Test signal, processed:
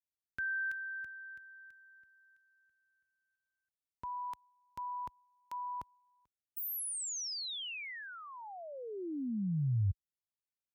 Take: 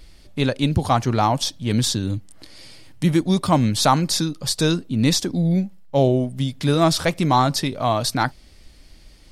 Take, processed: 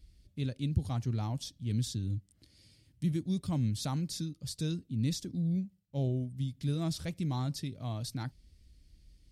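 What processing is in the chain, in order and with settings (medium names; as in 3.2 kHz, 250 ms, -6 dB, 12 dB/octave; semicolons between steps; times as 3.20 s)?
dynamic bell 880 Hz, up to +5 dB, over -28 dBFS, Q 1.8; high-pass 55 Hz 12 dB/octave; amplifier tone stack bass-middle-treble 10-0-1; trim +3 dB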